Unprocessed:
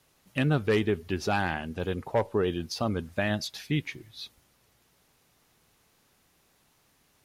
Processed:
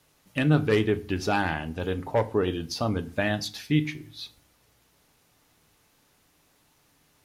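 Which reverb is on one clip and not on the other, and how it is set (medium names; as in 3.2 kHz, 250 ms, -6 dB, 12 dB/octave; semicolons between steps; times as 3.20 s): FDN reverb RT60 0.39 s, low-frequency decay 1.4×, high-frequency decay 0.8×, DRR 9.5 dB; trim +1.5 dB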